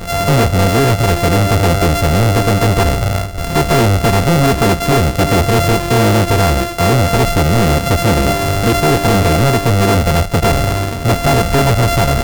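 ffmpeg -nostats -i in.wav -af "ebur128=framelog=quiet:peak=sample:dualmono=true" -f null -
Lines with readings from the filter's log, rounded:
Integrated loudness:
  I:          -9.9 LUFS
  Threshold: -19.9 LUFS
Loudness range:
  LRA:         0.7 LU
  Threshold: -29.9 LUFS
  LRA low:   -10.2 LUFS
  LRA high:   -9.5 LUFS
Sample peak:
  Peak:       -9.1 dBFS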